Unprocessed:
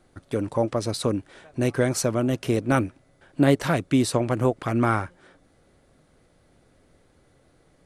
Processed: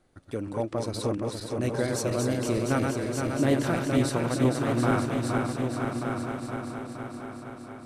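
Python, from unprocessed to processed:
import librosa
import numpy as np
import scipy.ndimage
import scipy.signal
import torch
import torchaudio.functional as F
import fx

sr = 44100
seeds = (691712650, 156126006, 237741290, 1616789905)

p1 = fx.reverse_delay_fb(x, sr, ms=234, feedback_pct=81, wet_db=-4)
p2 = p1 + fx.echo_feedback(p1, sr, ms=1184, feedback_pct=26, wet_db=-7, dry=0)
y = p2 * 10.0 ** (-6.5 / 20.0)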